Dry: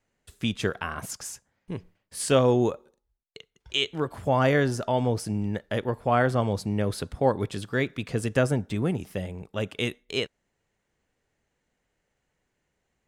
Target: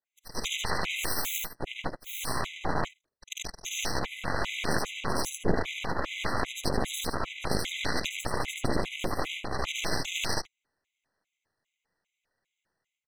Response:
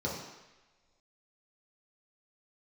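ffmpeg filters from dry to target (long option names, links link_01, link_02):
-filter_complex "[0:a]afftfilt=real='re':imag='-im':win_size=8192:overlap=0.75,asplit=2[link_01][link_02];[link_02]highpass=frequency=720:poles=1,volume=28dB,asoftclip=type=tanh:threshold=-12.5dB[link_03];[link_01][link_03]amix=inputs=2:normalize=0,lowpass=frequency=5000:poles=1,volume=-6dB,highpass=130,afftfilt=real='hypot(re,im)*cos(2*PI*random(0))':imag='hypot(re,im)*sin(2*PI*random(1))':win_size=512:overlap=0.75,aecho=1:1:76:0.668,areverse,acompressor=threshold=-33dB:ratio=16,areverse,asubboost=boost=3:cutoff=180,dynaudnorm=framelen=120:gausssize=5:maxgain=14dB,aeval=exprs='0.316*(cos(1*acos(clip(val(0)/0.316,-1,1)))-cos(1*PI/2))+0.158*(cos(2*acos(clip(val(0)/0.316,-1,1)))-cos(2*PI/2))+0.112*(cos(3*acos(clip(val(0)/0.316,-1,1)))-cos(3*PI/2))+0.01*(cos(4*acos(clip(val(0)/0.316,-1,1)))-cos(4*PI/2))+0.0447*(cos(6*acos(clip(val(0)/0.316,-1,1)))-cos(6*PI/2))':channel_layout=same,afftfilt=real='re*gt(sin(2*PI*2.5*pts/sr)*(1-2*mod(floor(b*sr/1024/2000),2)),0)':imag='im*gt(sin(2*PI*2.5*pts/sr)*(1-2*mod(floor(b*sr/1024/2000),2)),0)':win_size=1024:overlap=0.75,volume=-2.5dB"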